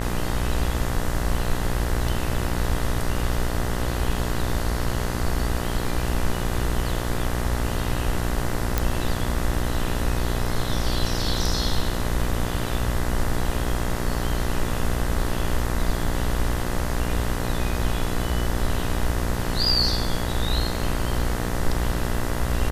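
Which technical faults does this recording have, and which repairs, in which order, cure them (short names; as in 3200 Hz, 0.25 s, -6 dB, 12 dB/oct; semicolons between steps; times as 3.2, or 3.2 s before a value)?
buzz 60 Hz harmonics 34 -28 dBFS
8.78 pop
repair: de-click; de-hum 60 Hz, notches 34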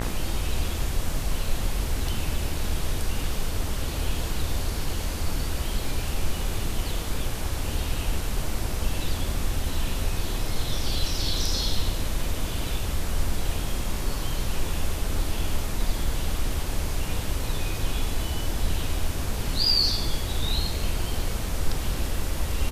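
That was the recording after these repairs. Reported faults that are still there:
none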